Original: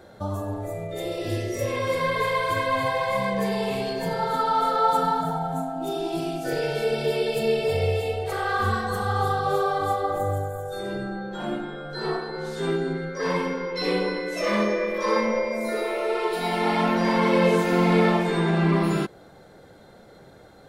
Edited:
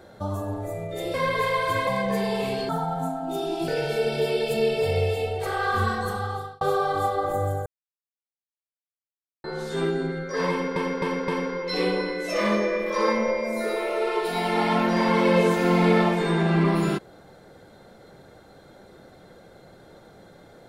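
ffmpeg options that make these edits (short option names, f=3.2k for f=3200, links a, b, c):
-filter_complex "[0:a]asplit=11[a][b][c][d][e][f][g][h][i][j][k];[a]atrim=end=1.142[l];[b]atrim=start=1.948:end=2.682[m];[c]atrim=start=3.148:end=3.972[n];[d]atrim=start=5.218:end=6.212[o];[e]atrim=start=6.538:end=9.47,asetpts=PTS-STARTPTS,afade=t=out:st=2.332:d=0.6[p];[f]atrim=start=9.47:end=10.52,asetpts=PTS-STARTPTS,afade=t=in:d=0.004:c=hsin,afade=t=out:st=1.046:d=0.004:c=hsin[q];[g]atrim=start=10.52:end=12.3,asetpts=PTS-STARTPTS,volume=0[r];[h]atrim=start=12.3:end=13.622,asetpts=PTS-STARTPTS,afade=t=in:d=0.004:c=hsin[s];[i]atrim=start=13.358:end=13.622[t];[j]atrim=start=13.358:end=13.622[u];[k]atrim=start=13.358[v];[l][m]acrossfade=d=0.004:c1=hsin:c2=hsin[w];[w][n]acrossfade=d=0.004:c1=hsin:c2=hsin[x];[x][o]acrossfade=d=0.004:c1=hsin:c2=hsin[y];[p][q][r][s]concat=n=4:v=0:a=1[z];[y][z]acrossfade=d=0.004:c1=hsin:c2=hsin[aa];[aa][t]acrossfade=d=0.004:c1=hsin:c2=hsin[ab];[ab][u]acrossfade=d=0.004:c1=hsin:c2=hsin[ac];[ac][v]acrossfade=d=0.004:c1=hsin:c2=hsin"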